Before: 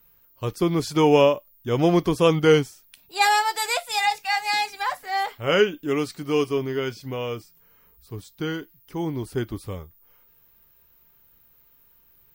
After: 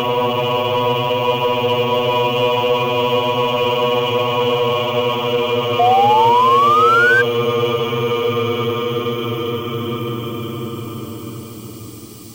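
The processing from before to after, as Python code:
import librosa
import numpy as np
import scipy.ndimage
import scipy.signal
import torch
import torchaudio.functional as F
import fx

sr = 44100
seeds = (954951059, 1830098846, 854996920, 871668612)

p1 = fx.graphic_eq_31(x, sr, hz=(100, 1000, 1600, 3150, 5000, 12500), db=(-7, 8, -3, 6, -10, 4))
p2 = fx.paulstretch(p1, sr, seeds[0], factor=50.0, window_s=0.1, from_s=7.17)
p3 = fx.spec_paint(p2, sr, seeds[1], shape='rise', start_s=5.79, length_s=1.43, low_hz=700.0, high_hz=1600.0, level_db=-22.0)
p4 = np.clip(p3, -10.0 ** (-30.5 / 20.0), 10.0 ** (-30.5 / 20.0))
p5 = p3 + (p4 * librosa.db_to_amplitude(-7.0))
y = p5 * librosa.db_to_amplitude(8.5)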